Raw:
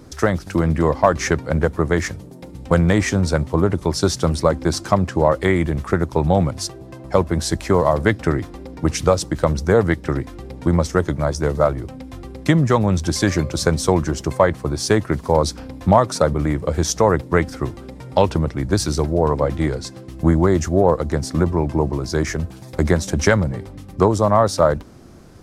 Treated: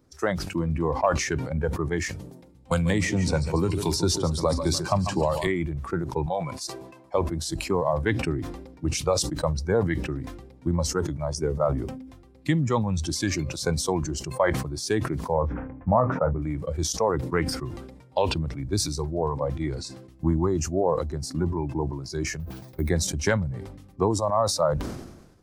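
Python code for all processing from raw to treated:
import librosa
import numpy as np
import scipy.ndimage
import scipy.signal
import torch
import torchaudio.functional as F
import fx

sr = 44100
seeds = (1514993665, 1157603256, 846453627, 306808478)

y = fx.chain(x, sr, fx.echo_feedback(ms=143, feedback_pct=48, wet_db=-10.5),
    fx.band_squash(depth_pct=100), at=(2.71, 5.47))
y = fx.chain(y, sr, fx.highpass(hz=390.0, slope=6),
    fx.small_body(hz=(1000.0, 2300.0), ring_ms=45, db=9), at=(6.26, 7.14))
y = fx.chain(y, sr, fx.notch(hz=4000.0, q=13.0),
    fx.small_body(hz=(230.0, 390.0), ring_ms=60, db=7), at=(11.35, 12.1))
y = fx.chain(y, sr, fx.cheby2_lowpass(hz=4000.0, order=4, stop_db=40),
    fx.doubler(ms=24.0, db=-12), at=(15.34, 16.42))
y = fx.chain(y, sr, fx.brickwall_lowpass(high_hz=7400.0),
    fx.resample_bad(factor=3, down='filtered', up='hold'), at=(22.4, 22.89))
y = fx.noise_reduce_blind(y, sr, reduce_db=12)
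y = fx.sustainer(y, sr, db_per_s=54.0)
y = y * 10.0 ** (-8.0 / 20.0)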